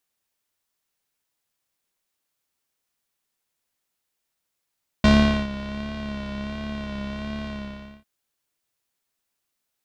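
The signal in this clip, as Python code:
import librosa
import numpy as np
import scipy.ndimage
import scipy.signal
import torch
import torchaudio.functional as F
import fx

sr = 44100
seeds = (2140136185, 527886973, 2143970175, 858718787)

y = fx.sub_patch_vibrato(sr, seeds[0], note=37, wave='saw', wave2='square', interval_st=19, detune_cents=29, level2_db=0, sub_db=-15.0, noise_db=-30.0, kind='lowpass', cutoff_hz=3100.0, q=1.5, env_oct=0.5, env_decay_s=0.27, env_sustain_pct=40, attack_ms=2.6, decay_s=0.43, sustain_db=-18.0, release_s=0.58, note_s=2.42, lfo_hz=1.4, vibrato_cents=44)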